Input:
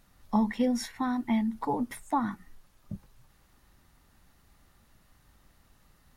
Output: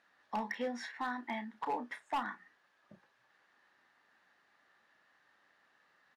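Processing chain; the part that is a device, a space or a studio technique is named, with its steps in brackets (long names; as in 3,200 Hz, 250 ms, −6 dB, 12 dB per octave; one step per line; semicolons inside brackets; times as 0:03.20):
megaphone (band-pass filter 480–3,700 Hz; parametric band 1,700 Hz +10.5 dB 0.28 octaves; hard clipping −26 dBFS, distortion −13 dB; double-tracking delay 33 ms −11 dB)
level −3.5 dB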